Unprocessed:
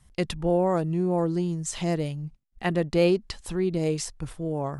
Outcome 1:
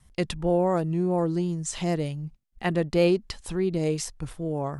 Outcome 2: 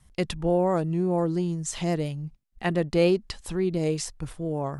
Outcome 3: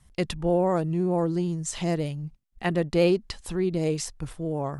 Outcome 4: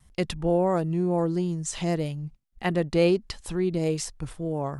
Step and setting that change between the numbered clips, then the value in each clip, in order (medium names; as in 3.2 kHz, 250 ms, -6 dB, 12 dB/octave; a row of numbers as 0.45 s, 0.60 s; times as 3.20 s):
vibrato, rate: 2.8 Hz, 5.9 Hz, 16 Hz, 1.6 Hz